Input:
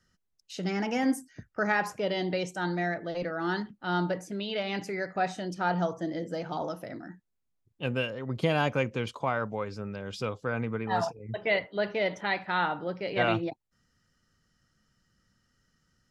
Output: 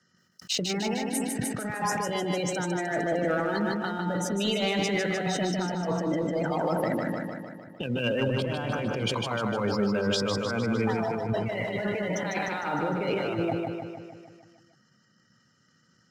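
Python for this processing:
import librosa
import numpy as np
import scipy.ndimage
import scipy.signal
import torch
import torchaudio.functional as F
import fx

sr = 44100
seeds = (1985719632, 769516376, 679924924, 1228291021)

p1 = scipy.signal.sosfilt(scipy.signal.butter(4, 120.0, 'highpass', fs=sr, output='sos'), x)
p2 = fx.transient(p1, sr, attack_db=8, sustain_db=0)
p3 = fx.over_compress(p2, sr, threshold_db=-35.0, ratio=-1.0)
p4 = fx.spec_gate(p3, sr, threshold_db=-25, keep='strong')
p5 = fx.leveller(p4, sr, passes=1)
p6 = p5 + fx.echo_feedback(p5, sr, ms=152, feedback_pct=59, wet_db=-4.0, dry=0)
y = fx.sustainer(p6, sr, db_per_s=31.0)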